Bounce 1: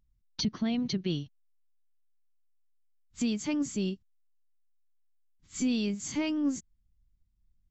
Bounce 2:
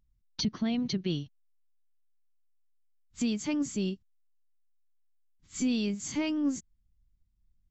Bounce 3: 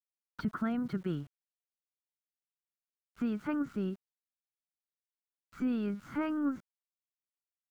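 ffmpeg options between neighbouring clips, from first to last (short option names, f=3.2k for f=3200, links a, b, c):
-af anull
-af "lowpass=f=1.4k:t=q:w=10,aeval=exprs='val(0)*gte(abs(val(0)),0.00251)':c=same,volume=-3.5dB"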